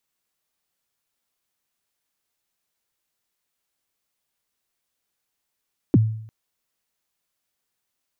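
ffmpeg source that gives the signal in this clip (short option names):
-f lavfi -i "aevalsrc='0.355*pow(10,-3*t/0.65)*sin(2*PI*(370*0.031/log(110/370)*(exp(log(110/370)*min(t,0.031)/0.031)-1)+110*max(t-0.031,0)))':d=0.35:s=44100"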